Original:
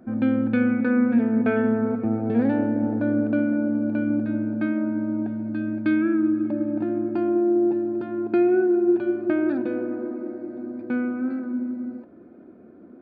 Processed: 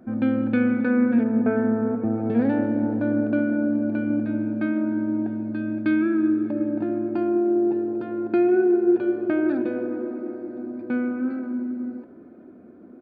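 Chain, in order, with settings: 1.23–2.16 LPF 1200 Hz -> 1700 Hz 12 dB/oct; frequency-shifting echo 0.149 s, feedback 57%, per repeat +43 Hz, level -23 dB; reverb RT60 2.8 s, pre-delay 24 ms, DRR 13.5 dB

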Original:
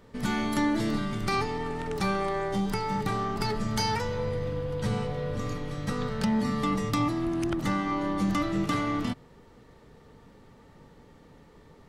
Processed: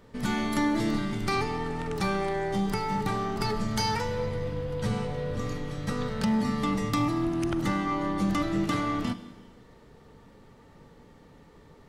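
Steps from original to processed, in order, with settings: Schroeder reverb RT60 1.4 s, combs from 33 ms, DRR 12 dB

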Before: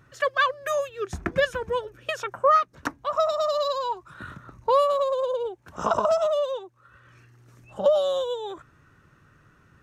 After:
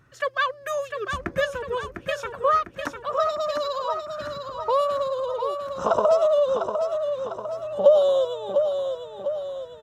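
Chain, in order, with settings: 5.85–8.25 bell 480 Hz +8 dB 1.2 oct; feedback echo 0.701 s, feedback 51%, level -6.5 dB; gain -2 dB

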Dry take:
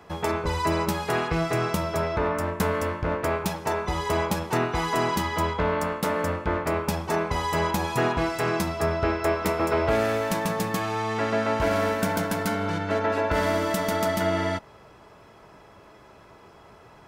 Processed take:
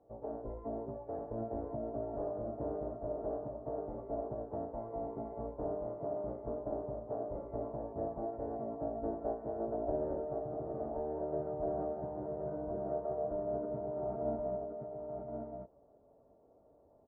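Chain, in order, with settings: ladder low-pass 670 Hz, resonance 60%; formant-preserving pitch shift -6.5 st; on a send: echo 1.073 s -4 dB; on the sum: gain -7.5 dB

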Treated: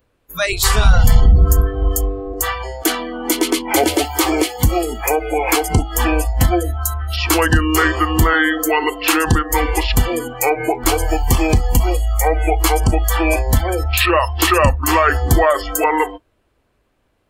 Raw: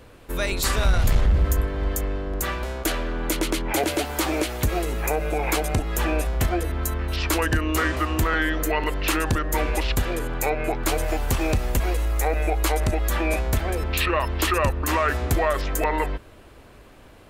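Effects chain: spectral noise reduction 25 dB; gain +9 dB

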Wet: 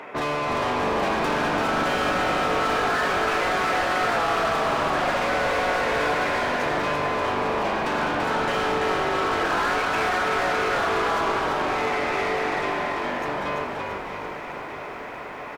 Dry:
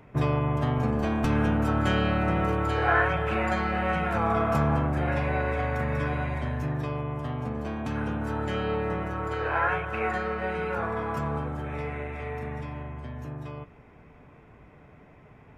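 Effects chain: HPF 320 Hz 12 dB/oct; limiter -21.5 dBFS, peak gain reduction 10.5 dB; overdrive pedal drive 27 dB, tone 3200 Hz, clips at -19.5 dBFS; frequency-shifting echo 0.337 s, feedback 57%, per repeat -50 Hz, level -4 dB; lo-fi delay 0.641 s, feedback 80%, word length 9-bit, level -15 dB

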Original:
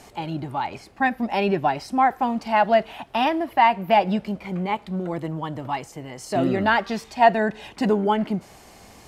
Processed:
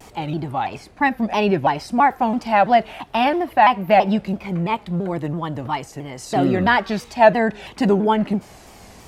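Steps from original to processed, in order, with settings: low shelf 130 Hz +4 dB; shaped vibrato saw down 3 Hz, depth 160 cents; gain +3 dB

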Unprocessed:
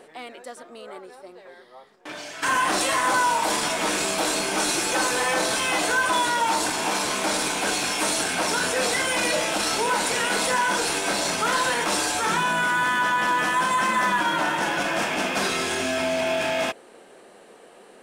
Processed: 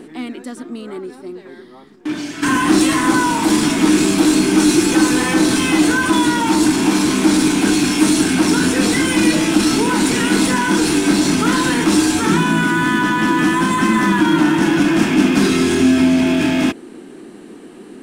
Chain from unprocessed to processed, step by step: resonant low shelf 410 Hz +10.5 dB, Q 3; in parallel at -9 dB: overloaded stage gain 24 dB; on the sum: gain +3 dB

